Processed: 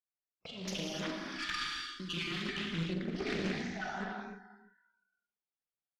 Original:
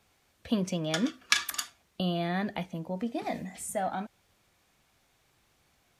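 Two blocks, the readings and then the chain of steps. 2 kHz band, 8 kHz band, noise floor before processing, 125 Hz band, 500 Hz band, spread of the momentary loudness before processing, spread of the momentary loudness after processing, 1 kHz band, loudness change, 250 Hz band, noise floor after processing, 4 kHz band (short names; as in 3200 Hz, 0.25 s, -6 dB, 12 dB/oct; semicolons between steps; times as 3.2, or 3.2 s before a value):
-3.0 dB, -12.0 dB, -70 dBFS, -5.0 dB, -6.5 dB, 10 LU, 9 LU, -7.5 dB, -5.5 dB, -6.5 dB, under -85 dBFS, -3.5 dB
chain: random spectral dropouts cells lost 37%; steep low-pass 5700 Hz 96 dB/oct; spectral gain 1.09–3.48, 460–1200 Hz -25 dB; expander -59 dBFS; bell 66 Hz -8.5 dB 2.2 oct; negative-ratio compressor -41 dBFS, ratio -1; tube stage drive 30 dB, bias 0.55; feedback echo 0.344 s, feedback 31%, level -15 dB; spectral noise reduction 27 dB; doubler 42 ms -10.5 dB; non-linear reverb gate 0.33 s flat, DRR -3 dB; Doppler distortion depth 0.41 ms; gain +1.5 dB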